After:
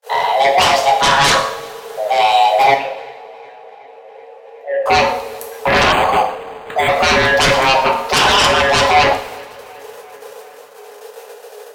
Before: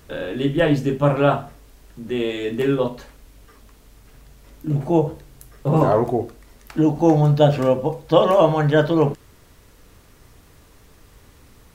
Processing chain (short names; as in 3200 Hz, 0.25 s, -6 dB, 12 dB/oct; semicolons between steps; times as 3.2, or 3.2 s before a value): notch 1800 Hz, Q 6.8; gate -48 dBFS, range -44 dB; 0.61–1.35 ten-band EQ 125 Hz -9 dB, 250 Hz -4 dB, 1000 Hz +7 dB, 4000 Hz +7 dB; in parallel at -6 dB: soft clip -19 dBFS, distortion -8 dB; on the sum: frequency shift +410 Hz; sine folder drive 16 dB, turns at 0 dBFS; 2.74–4.86 vowel filter e; on a send: tape echo 0.375 s, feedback 87%, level -23.5 dB, low-pass 4100 Hz; on the sum: two-slope reverb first 0.64 s, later 2.2 s, from -18 dB, DRR 3.5 dB; 5.92–6.89 decimation joined by straight lines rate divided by 8×; gain -10 dB